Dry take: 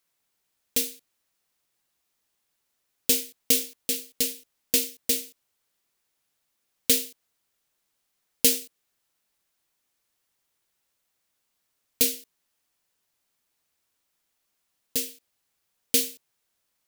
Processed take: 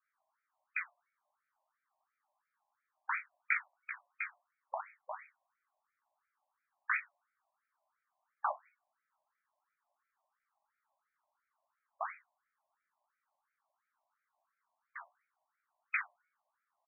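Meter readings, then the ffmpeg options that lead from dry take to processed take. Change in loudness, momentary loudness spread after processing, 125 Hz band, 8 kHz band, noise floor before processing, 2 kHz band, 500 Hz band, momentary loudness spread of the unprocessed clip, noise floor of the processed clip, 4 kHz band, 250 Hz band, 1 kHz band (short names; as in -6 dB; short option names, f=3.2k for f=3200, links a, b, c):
-15.0 dB, 16 LU, under -40 dB, under -40 dB, -77 dBFS, +2.5 dB, -16.0 dB, 11 LU, under -85 dBFS, under -40 dB, under -40 dB, n/a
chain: -filter_complex "[0:a]bandreject=f=377.8:t=h:w=4,bandreject=f=755.6:t=h:w=4,bandreject=f=1.1334k:t=h:w=4,bandreject=f=1.5112k:t=h:w=4,bandreject=f=1.889k:t=h:w=4,bandreject=f=2.2668k:t=h:w=4,bandreject=f=2.6446k:t=h:w=4,bandreject=f=3.0224k:t=h:w=4,bandreject=f=3.4002k:t=h:w=4,bandreject=f=3.778k:t=h:w=4,bandreject=f=4.1558k:t=h:w=4,bandreject=f=4.5336k:t=h:w=4,bandreject=f=4.9114k:t=h:w=4,bandreject=f=5.2892k:t=h:w=4,bandreject=f=5.667k:t=h:w=4,bandreject=f=6.0448k:t=h:w=4,bandreject=f=6.4226k:t=h:w=4,bandreject=f=6.8004k:t=h:w=4,bandreject=f=7.1782k:t=h:w=4,bandreject=f=7.556k:t=h:w=4,bandreject=f=7.9338k:t=h:w=4,bandreject=f=8.3116k:t=h:w=4,bandreject=f=8.6894k:t=h:w=4,bandreject=f=9.0672k:t=h:w=4,bandreject=f=9.445k:t=h:w=4,bandreject=f=9.8228k:t=h:w=4,bandreject=f=10.2006k:t=h:w=4,bandreject=f=10.5784k:t=h:w=4,bandreject=f=10.9562k:t=h:w=4,bandreject=f=11.334k:t=h:w=4,bandreject=f=11.7118k:t=h:w=4,bandreject=f=12.0896k:t=h:w=4,bandreject=f=12.4674k:t=h:w=4,bandreject=f=12.8452k:t=h:w=4,bandreject=f=13.223k:t=h:w=4,bandreject=f=13.6008k:t=h:w=4,bandreject=f=13.9786k:t=h:w=4,bandreject=f=14.3564k:t=h:w=4,bandreject=f=14.7342k:t=h:w=4,acrossover=split=320|1300[a][b][c];[b]acompressor=threshold=-45dB:ratio=6[d];[a][d][c]amix=inputs=3:normalize=0,asplit=2[e][f];[f]adelay=41,volume=-6dB[g];[e][g]amix=inputs=2:normalize=0,flanger=delay=17:depth=2.5:speed=2.3,adynamicsmooth=sensitivity=2.5:basefreq=1.2k,afreqshift=-43,afftfilt=real='re*between(b*sr/1024,780*pow(1800/780,0.5+0.5*sin(2*PI*2.9*pts/sr))/1.41,780*pow(1800/780,0.5+0.5*sin(2*PI*2.9*pts/sr))*1.41)':imag='im*between(b*sr/1024,780*pow(1800/780,0.5+0.5*sin(2*PI*2.9*pts/sr))/1.41,780*pow(1800/780,0.5+0.5*sin(2*PI*2.9*pts/sr))*1.41)':win_size=1024:overlap=0.75,volume=14dB"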